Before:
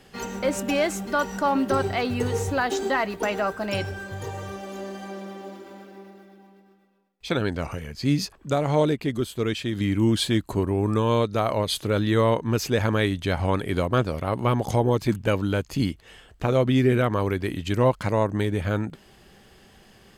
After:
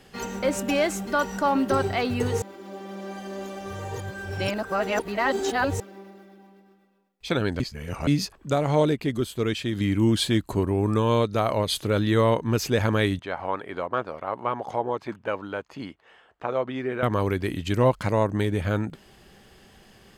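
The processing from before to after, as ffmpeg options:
ffmpeg -i in.wav -filter_complex "[0:a]asettb=1/sr,asplit=3[link_01][link_02][link_03];[link_01]atrim=end=13.194[link_04];[link_02]atrim=start=13.19:end=17.03,asetpts=PTS-STARTPTS,afade=type=in:duration=0.004:curve=qsin,afade=type=out:start_time=3.836:duration=0.004:curve=qsin,bandpass=frequency=980:width_type=q:width=1[link_05];[link_03]atrim=start=17.026[link_06];[link_04][link_05]acrossfade=duration=0.004:curve1=hsin:curve2=qsin[link_07];[link_07][link_06]acrossfade=duration=0.004:curve1=qsin:curve2=hsin,asplit=5[link_08][link_09][link_10][link_11][link_12];[link_08]atrim=end=2.422[link_13];[link_09]atrim=start=2.418:end=5.802,asetpts=PTS-STARTPTS,areverse[link_14];[link_10]atrim=start=5.798:end=7.602[link_15];[link_11]atrim=start=7.598:end=8.072,asetpts=PTS-STARTPTS,areverse[link_16];[link_12]atrim=start=8.068[link_17];[link_13][link_14]acrossfade=duration=0.004:curve1=hsin:curve2=hsin[link_18];[link_18][link_15]acrossfade=duration=0.004:curve1=hsin:curve2=hsin[link_19];[link_19][link_16]acrossfade=duration=0.004:curve1=hsin:curve2=hsin[link_20];[link_20][link_17]acrossfade=duration=0.004:curve1=hsin:curve2=hsin" out.wav

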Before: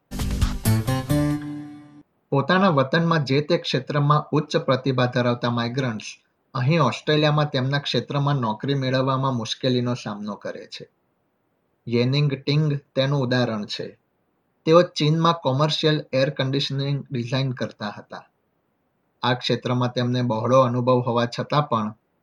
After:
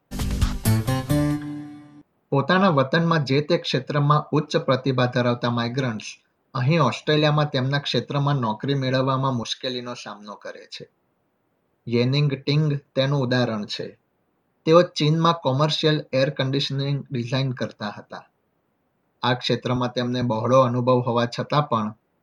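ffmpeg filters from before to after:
ffmpeg -i in.wav -filter_complex "[0:a]asettb=1/sr,asplit=3[link_01][link_02][link_03];[link_01]atrim=end=9.434[link_04];[link_02]atrim=start=9.43:end=10.8,asetpts=PTS-STARTPTS,afade=type=in:duration=0.004:curve=qsin,afade=type=out:start_time=1.366:duration=0.004:curve=qsin,highpass=frequency=760:poles=1[link_05];[link_03]atrim=start=10.796[link_06];[link_04][link_05]acrossfade=duration=0.004:curve1=hsin:curve2=qsin[link_07];[link_07][link_06]acrossfade=duration=0.004:curve1=qsin:curve2=hsin,asettb=1/sr,asplit=3[link_08][link_09][link_10];[link_08]atrim=end=19.764[link_11];[link_09]atrim=start=19.76:end=20.22,asetpts=PTS-STARTPTS,afade=type=in:duration=0.004:curve=qsin,afade=type=out:start_time=0.456:duration=0.004:curve=qsin,highpass=160[link_12];[link_10]atrim=start=20.216[link_13];[link_11][link_12]acrossfade=duration=0.004:curve1=hsin:curve2=qsin[link_14];[link_14][link_13]acrossfade=duration=0.004:curve1=qsin:curve2=hsin" out.wav

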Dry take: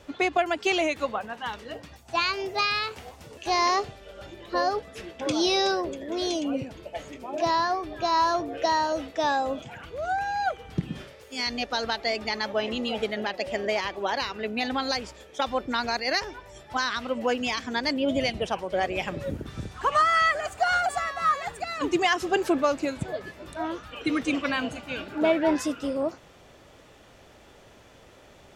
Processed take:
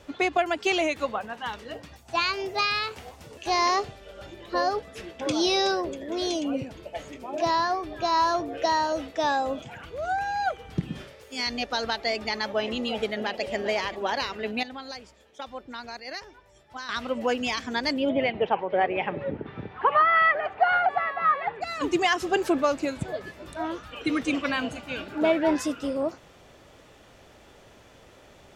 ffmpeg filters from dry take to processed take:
ffmpeg -i in.wav -filter_complex "[0:a]asplit=2[link_01][link_02];[link_02]afade=type=in:start_time=12.79:duration=0.01,afade=type=out:start_time=13.54:duration=0.01,aecho=0:1:400|800|1200|1600|2000|2400|2800|3200:0.211349|0.137377|0.0892949|0.0580417|0.0377271|0.0245226|0.0159397|0.0103608[link_03];[link_01][link_03]amix=inputs=2:normalize=0,asplit=3[link_04][link_05][link_06];[link_04]afade=type=out:start_time=18.08:duration=0.02[link_07];[link_05]highpass=130,equalizer=frequency=430:width_type=q:width=4:gain=6,equalizer=frequency=860:width_type=q:width=4:gain=8,equalizer=frequency=2000:width_type=q:width=4:gain=3,lowpass=frequency=2900:width=0.5412,lowpass=frequency=2900:width=1.3066,afade=type=in:start_time=18.08:duration=0.02,afade=type=out:start_time=21.61:duration=0.02[link_08];[link_06]afade=type=in:start_time=21.61:duration=0.02[link_09];[link_07][link_08][link_09]amix=inputs=3:normalize=0,asplit=3[link_10][link_11][link_12];[link_10]atrim=end=14.632[link_13];[link_11]atrim=start=14.628:end=16.892,asetpts=PTS-STARTPTS,volume=-11dB[link_14];[link_12]atrim=start=16.888[link_15];[link_13][link_14]acrossfade=duration=0.004:curve1=hsin:curve2=hsin[link_16];[link_16][link_15]acrossfade=duration=0.004:curve1=hsin:curve2=hsin" out.wav

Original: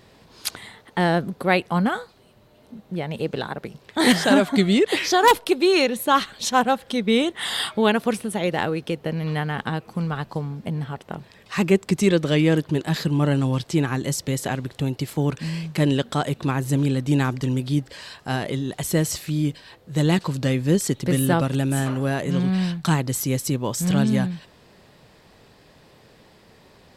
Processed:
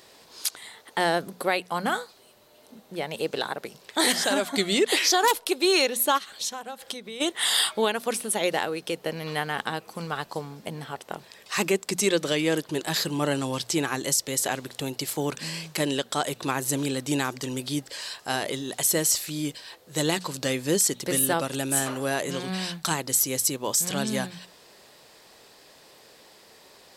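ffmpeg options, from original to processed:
ffmpeg -i in.wav -filter_complex "[0:a]asplit=3[link_01][link_02][link_03];[link_01]afade=type=out:start_time=6.17:duration=0.02[link_04];[link_02]acompressor=threshold=-30dB:ratio=20:attack=3.2:release=140:knee=1:detection=peak,afade=type=in:start_time=6.17:duration=0.02,afade=type=out:start_time=7.2:duration=0.02[link_05];[link_03]afade=type=in:start_time=7.2:duration=0.02[link_06];[link_04][link_05][link_06]amix=inputs=3:normalize=0,bass=frequency=250:gain=-14,treble=frequency=4000:gain=9,bandreject=frequency=60:width_type=h:width=6,bandreject=frequency=120:width_type=h:width=6,bandreject=frequency=180:width_type=h:width=6,bandreject=frequency=240:width_type=h:width=6,alimiter=limit=-10.5dB:level=0:latency=1:release=435" out.wav

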